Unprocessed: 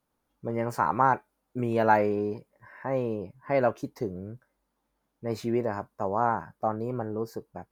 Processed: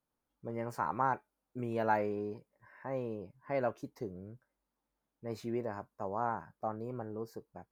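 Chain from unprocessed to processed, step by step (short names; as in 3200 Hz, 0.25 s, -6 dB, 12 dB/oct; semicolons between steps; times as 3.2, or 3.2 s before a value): gain -9 dB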